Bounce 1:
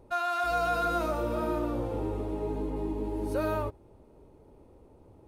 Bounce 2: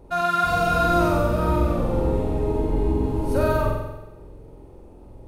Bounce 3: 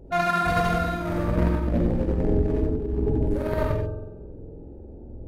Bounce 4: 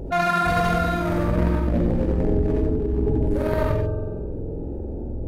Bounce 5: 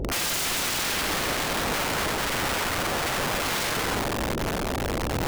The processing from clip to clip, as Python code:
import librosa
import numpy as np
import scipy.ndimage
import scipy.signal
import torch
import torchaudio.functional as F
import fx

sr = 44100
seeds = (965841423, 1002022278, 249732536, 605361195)

y1 = fx.octave_divider(x, sr, octaves=2, level_db=3.0)
y1 = fx.room_flutter(y1, sr, wall_m=7.9, rt60_s=1.0)
y1 = F.gain(torch.from_numpy(y1), 5.0).numpy()
y2 = fx.wiener(y1, sr, points=41)
y2 = fx.over_compress(y2, sr, threshold_db=-24.0, ratio=-0.5)
y2 = fx.rev_gated(y2, sr, seeds[0], gate_ms=110, shape='rising', drr_db=2.0)
y3 = fx.env_flatten(y2, sr, amount_pct=50)
y4 = fx.high_shelf(y3, sr, hz=3500.0, db=-9.0)
y4 = (np.mod(10.0 ** (25.0 / 20.0) * y4 + 1.0, 2.0) - 1.0) / 10.0 ** (25.0 / 20.0)
y4 = F.gain(torch.from_numpy(y4), 3.0).numpy()